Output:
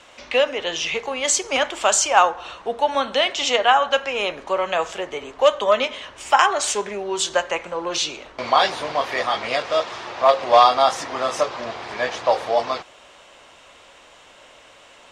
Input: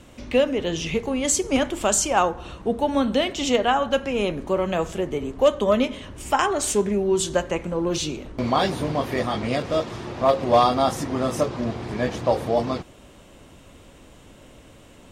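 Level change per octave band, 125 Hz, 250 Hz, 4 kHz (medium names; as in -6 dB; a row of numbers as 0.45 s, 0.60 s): -15.5 dB, -11.0 dB, +6.5 dB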